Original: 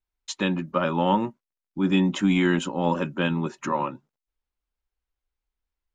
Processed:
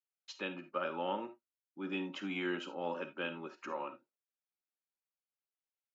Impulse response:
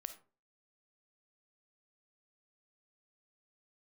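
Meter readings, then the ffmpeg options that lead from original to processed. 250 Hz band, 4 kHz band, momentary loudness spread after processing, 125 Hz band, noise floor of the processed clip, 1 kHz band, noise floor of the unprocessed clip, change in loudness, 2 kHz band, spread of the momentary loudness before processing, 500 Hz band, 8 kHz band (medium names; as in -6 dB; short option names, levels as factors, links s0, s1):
-18.5 dB, -12.5 dB, 10 LU, -25.0 dB, under -85 dBFS, -14.0 dB, under -85 dBFS, -15.0 dB, -11.0 dB, 8 LU, -12.0 dB, under -20 dB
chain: -filter_complex "[0:a]highpass=480,equalizer=f=660:t=q:w=4:g=-6,equalizer=f=1000:t=q:w=4:g=-10,equalizer=f=1900:t=q:w=4:g=-7,equalizer=f=3600:t=q:w=4:g=-9,lowpass=f=4600:w=0.5412,lowpass=f=4600:w=1.3066[s0];[1:a]atrim=start_sample=2205,atrim=end_sample=3969[s1];[s0][s1]afir=irnorm=-1:irlink=0,volume=0.668"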